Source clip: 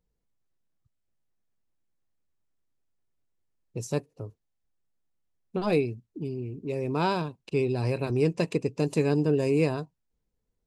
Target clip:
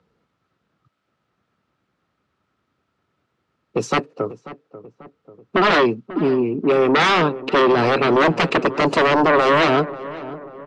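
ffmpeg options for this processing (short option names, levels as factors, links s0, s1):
-filter_complex "[0:a]highpass=f=62:w=0.5412,highpass=f=62:w=1.3066,equalizer=f=1300:w=5.4:g=12,acrossover=split=150[s0][s1];[s0]acompressor=mode=upward:threshold=0.00447:ratio=2.5[s2];[s1]aeval=exprs='0.282*sin(PI/2*6.31*val(0)/0.282)':c=same[s3];[s2][s3]amix=inputs=2:normalize=0,lowpass=7700,acrossover=split=160 4200:gain=0.2 1 0.141[s4][s5][s6];[s4][s5][s6]amix=inputs=3:normalize=0,asplit=2[s7][s8];[s8]adelay=540,lowpass=f=1300:p=1,volume=0.178,asplit=2[s9][s10];[s10]adelay=540,lowpass=f=1300:p=1,volume=0.54,asplit=2[s11][s12];[s12]adelay=540,lowpass=f=1300:p=1,volume=0.54,asplit=2[s13][s14];[s14]adelay=540,lowpass=f=1300:p=1,volume=0.54,asplit=2[s15][s16];[s16]adelay=540,lowpass=f=1300:p=1,volume=0.54[s17];[s7][s9][s11][s13][s15][s17]amix=inputs=6:normalize=0"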